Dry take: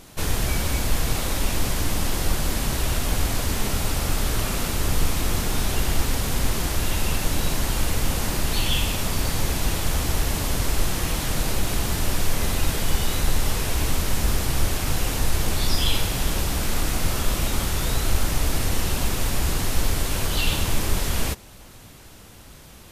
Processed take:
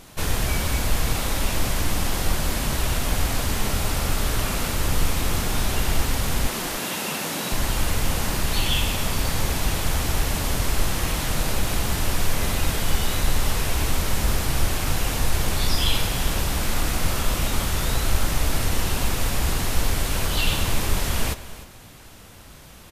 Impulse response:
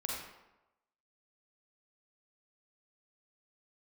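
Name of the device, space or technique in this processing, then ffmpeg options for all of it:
filtered reverb send: -filter_complex "[0:a]asplit=2[s0][s1];[s1]highpass=f=320:w=0.5412,highpass=f=320:w=1.3066,lowpass=4100[s2];[1:a]atrim=start_sample=2205[s3];[s2][s3]afir=irnorm=-1:irlink=0,volume=0.237[s4];[s0][s4]amix=inputs=2:normalize=0,asettb=1/sr,asplit=3[s5][s6][s7];[s5]atrim=end=6.484[s8];[s6]atrim=start=6.48:end=7.52,asetpts=PTS-STARTPTS,afade=t=in:d=0.004:c=qsin,afade=t=out:st=1.036:d=0.004:c=qsin,highpass=f=170:w=0.5412,highpass=f=170:w=1.3066[s9];[s7]atrim=start=7.516[s10];[s8][s9]acrossfade=d=0.004:c1=hsin:c2=qsin[s11];[s11][s10]acrossfade=d=0.004:c1=qsin:c2=hsin,aecho=1:1:302:0.158"

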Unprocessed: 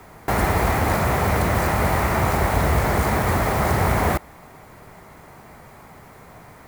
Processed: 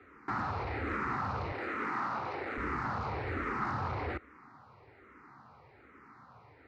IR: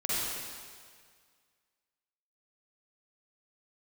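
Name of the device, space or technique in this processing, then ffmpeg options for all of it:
barber-pole phaser into a guitar amplifier: -filter_complex "[0:a]asplit=2[s0][s1];[s1]afreqshift=-1.2[s2];[s0][s2]amix=inputs=2:normalize=1,asoftclip=type=tanh:threshold=0.112,highpass=87,equalizer=f=170:t=q:w=4:g=-10,equalizer=f=290:t=q:w=4:g=4,equalizer=f=640:t=q:w=4:g=-10,equalizer=f=1300:t=q:w=4:g=7,equalizer=f=3300:t=q:w=4:g=-9,lowpass=f=4200:w=0.5412,lowpass=f=4200:w=1.3066,asettb=1/sr,asplit=3[s3][s4][s5];[s3]atrim=end=1.524[s6];[s4]atrim=start=1.52:end=2.58,asetpts=PTS-STARTPTS,afade=t=in:d=0.004:c=qsin,afade=t=out:st=1.056:d=0.004:c=qsin,highpass=210[s7];[s5]atrim=start=2.576[s8];[s6][s7]acrossfade=d=0.004:c1=hsin:c2=qsin[s9];[s9][s8]acrossfade=d=0.004:c1=qsin:c2=hsin,volume=0.376"

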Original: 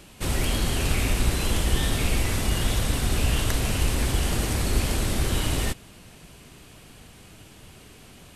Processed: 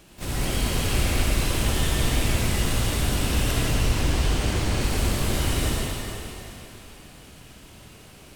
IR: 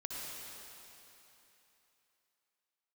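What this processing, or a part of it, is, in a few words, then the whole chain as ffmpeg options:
shimmer-style reverb: -filter_complex "[0:a]asettb=1/sr,asplit=3[s0][s1][s2];[s0]atrim=end=3.574[s3];[s1]atrim=start=3.57:end=4.81,asetpts=PTS-STARTPTS,afade=t=in:d=0.004:c=qsin,afade=t=out:st=1.236:d=0.004:c=qsin,lowpass=7200[s4];[s2]atrim=start=4.806[s5];[s3][s4]acrossfade=d=0.004:c1=hsin:c2=qsin[s6];[s6][s5]acrossfade=d=0.004:c1=qsin:c2=hsin,asplit=2[s7][s8];[s8]asetrate=88200,aresample=44100,atempo=0.5,volume=0.355[s9];[s7][s9]amix=inputs=2:normalize=0[s10];[1:a]atrim=start_sample=2205[s11];[s10][s11]afir=irnorm=-1:irlink=0"

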